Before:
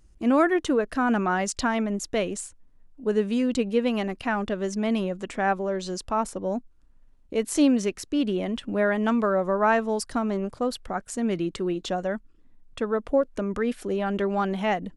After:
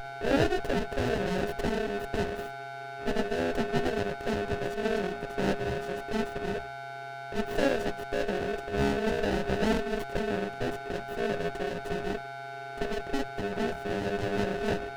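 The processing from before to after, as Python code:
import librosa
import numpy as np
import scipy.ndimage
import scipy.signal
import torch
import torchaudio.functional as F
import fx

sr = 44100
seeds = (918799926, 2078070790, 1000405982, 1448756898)

y = np.abs(x)
y = y + 10.0 ** (-29.0 / 20.0) * np.sin(2.0 * np.pi * 410.0 * np.arange(len(y)) / sr)
y = fx.hum_notches(y, sr, base_hz=60, count=10)
y = y * np.sin(2.0 * np.pi * 1100.0 * np.arange(len(y)) / sr)
y = fx.running_max(y, sr, window=33)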